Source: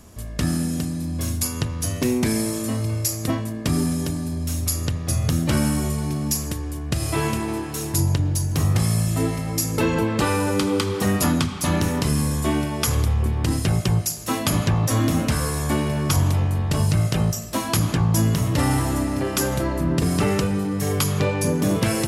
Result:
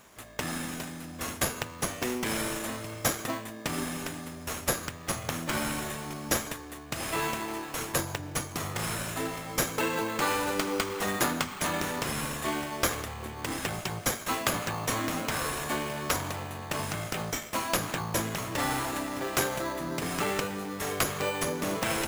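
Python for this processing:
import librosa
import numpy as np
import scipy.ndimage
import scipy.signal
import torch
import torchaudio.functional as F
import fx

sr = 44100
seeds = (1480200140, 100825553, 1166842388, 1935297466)

p1 = fx.highpass(x, sr, hz=1200.0, slope=6)
p2 = fx.sample_hold(p1, sr, seeds[0], rate_hz=5400.0, jitter_pct=0)
p3 = p1 + (p2 * librosa.db_to_amplitude(2.5))
y = p3 * librosa.db_to_amplitude(-6.5)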